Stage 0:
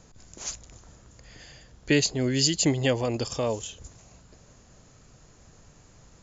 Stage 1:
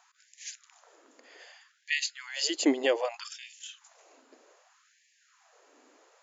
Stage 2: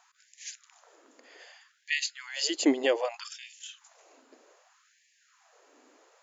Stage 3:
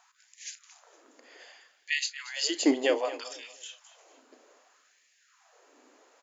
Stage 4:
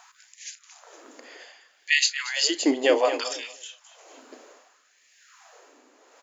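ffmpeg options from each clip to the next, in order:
ffmpeg -i in.wav -af "bass=frequency=250:gain=2,treble=frequency=4000:gain=-9,afftfilt=real='re*gte(b*sr/1024,230*pow(1700/230,0.5+0.5*sin(2*PI*0.64*pts/sr)))':imag='im*gte(b*sr/1024,230*pow(1700/230,0.5+0.5*sin(2*PI*0.64*pts/sr)))':win_size=1024:overlap=0.75" out.wav
ffmpeg -i in.wav -af "lowshelf=frequency=150:gain=5" out.wav
ffmpeg -i in.wav -filter_complex "[0:a]asplit=2[link_01][link_02];[link_02]adelay=35,volume=-13dB[link_03];[link_01][link_03]amix=inputs=2:normalize=0,aecho=1:1:232|464|696:0.158|0.046|0.0133" out.wav
ffmpeg -i in.wav -af "acontrast=30,tremolo=f=0.93:d=0.65,volume=5.5dB" out.wav

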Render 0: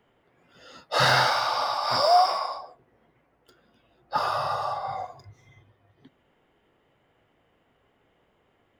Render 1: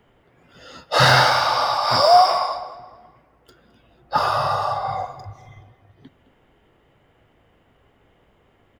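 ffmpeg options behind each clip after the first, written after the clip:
ffmpeg -i in.wav -filter_complex "[0:a]lowshelf=frequency=110:gain=9.5,asplit=2[link_01][link_02];[link_02]adelay=213,lowpass=frequency=3600:poles=1,volume=-15dB,asplit=2[link_03][link_04];[link_04]adelay=213,lowpass=frequency=3600:poles=1,volume=0.4,asplit=2[link_05][link_06];[link_06]adelay=213,lowpass=frequency=3600:poles=1,volume=0.4,asplit=2[link_07][link_08];[link_08]adelay=213,lowpass=frequency=3600:poles=1,volume=0.4[link_09];[link_01][link_03][link_05][link_07][link_09]amix=inputs=5:normalize=0,volume=6dB" out.wav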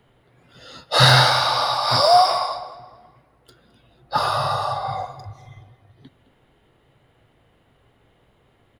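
ffmpeg -i in.wav -af "equalizer=frequency=125:width_type=o:width=0.33:gain=7,equalizer=frequency=4000:width_type=o:width=0.33:gain=9,equalizer=frequency=10000:width_type=o:width=0.33:gain=10,volume=-1.5dB" out.wav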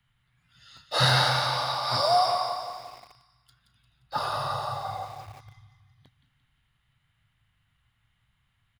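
ffmpeg -i in.wav -filter_complex "[0:a]aecho=1:1:175|350|525|700|875|1050:0.376|0.188|0.094|0.047|0.0235|0.0117,acrossover=split=170|1100|2900[link_01][link_02][link_03][link_04];[link_02]aeval=exprs='val(0)*gte(abs(val(0)),0.0119)':channel_layout=same[link_05];[link_01][link_05][link_03][link_04]amix=inputs=4:normalize=0,volume=-8.5dB" out.wav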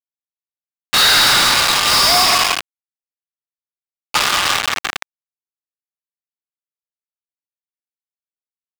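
ffmpeg -i in.wav -filter_complex "[0:a]aeval=exprs='val(0)*gte(abs(val(0)),0.0501)':channel_layout=same,highpass=1500,asplit=2[link_01][link_02];[link_02]highpass=frequency=720:poles=1,volume=35dB,asoftclip=type=tanh:threshold=-10dB[link_03];[link_01][link_03]amix=inputs=2:normalize=0,lowpass=frequency=7300:poles=1,volume=-6dB,volume=5dB" out.wav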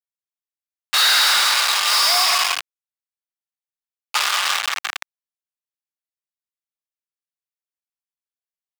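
ffmpeg -i in.wav -af "highpass=790,volume=-3.5dB" out.wav

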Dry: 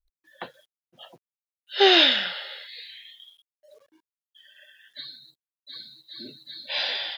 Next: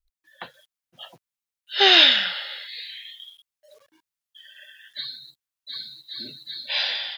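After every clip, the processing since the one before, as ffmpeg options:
ffmpeg -i in.wav -af "equalizer=frequency=370:width_type=o:width=2:gain=-9,dynaudnorm=framelen=180:gausssize=7:maxgain=5.5dB,volume=1dB" out.wav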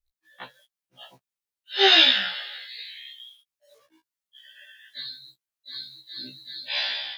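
ffmpeg -i in.wav -af "afftfilt=real='re*1.73*eq(mod(b,3),0)':imag='im*1.73*eq(mod(b,3),0)':win_size=2048:overlap=0.75" out.wav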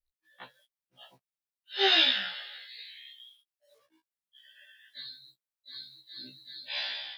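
ffmpeg -i in.wav -af "equalizer=frequency=6500:width=6.2:gain=-4.5,volume=-7dB" out.wav

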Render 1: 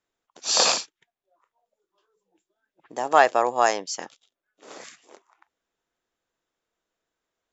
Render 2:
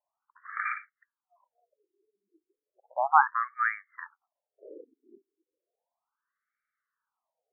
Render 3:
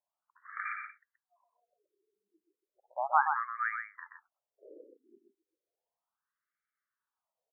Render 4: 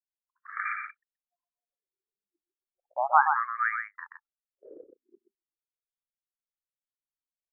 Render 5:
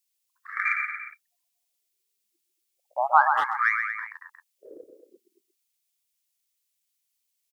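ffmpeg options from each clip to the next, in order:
ffmpeg -i in.wav -filter_complex "[0:a]asplit=2[link_01][link_02];[link_02]asoftclip=type=tanh:threshold=-21.5dB,volume=-11.5dB[link_03];[link_01][link_03]amix=inputs=2:normalize=0,afftfilt=real='re*between(b*sr/1024,300*pow(1700/300,0.5+0.5*sin(2*PI*0.34*pts/sr))/1.41,300*pow(1700/300,0.5+0.5*sin(2*PI*0.34*pts/sr))*1.41)':imag='im*between(b*sr/1024,300*pow(1700/300,0.5+0.5*sin(2*PI*0.34*pts/sr))/1.41,300*pow(1700/300,0.5+0.5*sin(2*PI*0.34*pts/sr))*1.41)':win_size=1024:overlap=0.75" out.wav
ffmpeg -i in.wav -af "aecho=1:1:127:0.501,volume=-6dB" out.wav
ffmpeg -i in.wav -af "anlmdn=0.00251,volume=5.5dB" out.wav
ffmpeg -i in.wav -filter_complex "[0:a]aexciter=amount=3:drive=7.7:freq=2100,asplit=2[link_01][link_02];[link_02]adelay=230,highpass=300,lowpass=3400,asoftclip=type=hard:threshold=-14.5dB,volume=-9dB[link_03];[link_01][link_03]amix=inputs=2:normalize=0,volume=2.5dB" out.wav

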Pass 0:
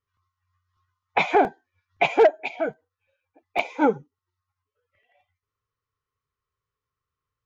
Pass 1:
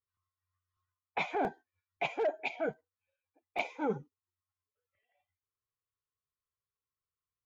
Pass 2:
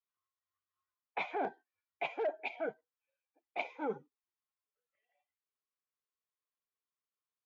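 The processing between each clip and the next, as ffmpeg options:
ffmpeg -i in.wav -af "agate=range=-11dB:threshold=-40dB:ratio=16:detection=peak,areverse,acompressor=threshold=-27dB:ratio=6,areverse,volume=-3dB" out.wav
ffmpeg -i in.wav -af "highpass=270,lowpass=3800,volume=-3dB" out.wav

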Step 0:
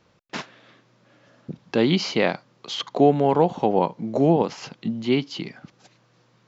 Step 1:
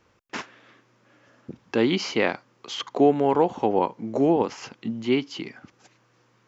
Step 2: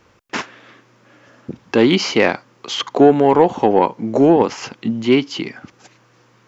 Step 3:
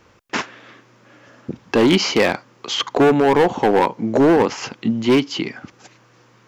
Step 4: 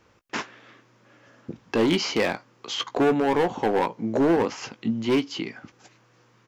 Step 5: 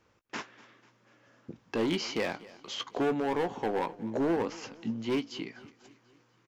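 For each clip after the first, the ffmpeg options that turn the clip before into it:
ffmpeg -i in.wav -af "equalizer=frequency=160:width_type=o:width=0.67:gain=-11,equalizer=frequency=630:width_type=o:width=0.67:gain=-5,equalizer=frequency=4000:width_type=o:width=0.67:gain=-7,volume=1dB" out.wav
ffmpeg -i in.wav -af "acontrast=87,volume=2dB" out.wav
ffmpeg -i in.wav -af "volume=10.5dB,asoftclip=hard,volume=-10.5dB,volume=1dB" out.wav
ffmpeg -i in.wav -filter_complex "[0:a]asplit=2[link_01][link_02];[link_02]adelay=18,volume=-11.5dB[link_03];[link_01][link_03]amix=inputs=2:normalize=0,volume=-7.5dB" out.wav
ffmpeg -i in.wav -af "aecho=1:1:245|490|735|980:0.0944|0.051|0.0275|0.0149,volume=-8dB" out.wav

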